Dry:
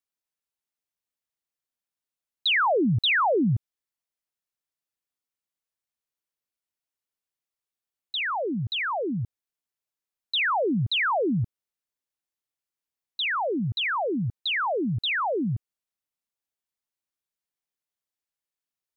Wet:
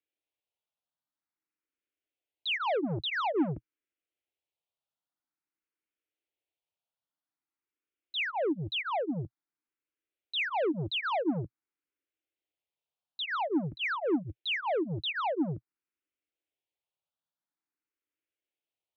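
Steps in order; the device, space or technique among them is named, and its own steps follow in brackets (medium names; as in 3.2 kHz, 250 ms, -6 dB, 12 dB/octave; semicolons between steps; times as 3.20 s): barber-pole phaser into a guitar amplifier (barber-pole phaser +0.49 Hz; saturation -30.5 dBFS, distortion -9 dB; cabinet simulation 76–3400 Hz, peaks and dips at 120 Hz -8 dB, 210 Hz -10 dB, 310 Hz +7 dB, 1.1 kHz -5 dB, 1.8 kHz -5 dB); trim +4 dB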